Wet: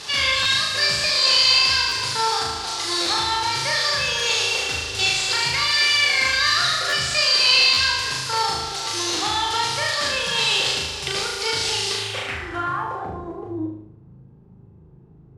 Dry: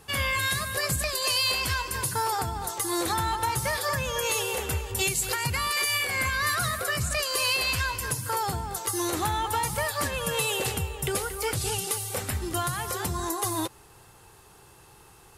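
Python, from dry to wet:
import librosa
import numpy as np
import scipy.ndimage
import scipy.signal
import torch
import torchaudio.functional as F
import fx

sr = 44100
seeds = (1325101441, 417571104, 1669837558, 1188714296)

y = fx.delta_mod(x, sr, bps=64000, step_db=-34.0)
y = fx.tilt_eq(y, sr, slope=2.5)
y = fx.room_flutter(y, sr, wall_m=6.5, rt60_s=0.96)
y = fx.filter_sweep_lowpass(y, sr, from_hz=4700.0, to_hz=180.0, start_s=11.91, end_s=13.92, q=2.1)
y = fx.buffer_glitch(y, sr, at_s=(0.42, 1.06, 1.88, 3.02, 6.89, 7.73), block=512, repeats=2)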